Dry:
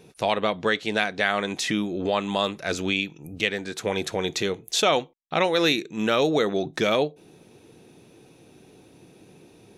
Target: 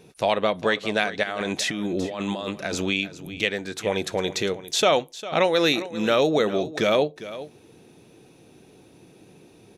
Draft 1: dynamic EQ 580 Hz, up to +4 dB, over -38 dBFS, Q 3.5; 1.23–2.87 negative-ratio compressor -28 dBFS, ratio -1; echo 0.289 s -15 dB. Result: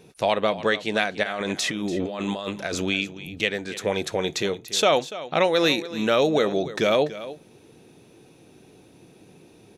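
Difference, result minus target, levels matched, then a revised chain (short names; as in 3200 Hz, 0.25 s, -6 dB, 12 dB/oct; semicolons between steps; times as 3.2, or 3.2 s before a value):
echo 0.113 s early
dynamic EQ 580 Hz, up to +4 dB, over -38 dBFS, Q 3.5; 1.23–2.87 negative-ratio compressor -28 dBFS, ratio -1; echo 0.402 s -15 dB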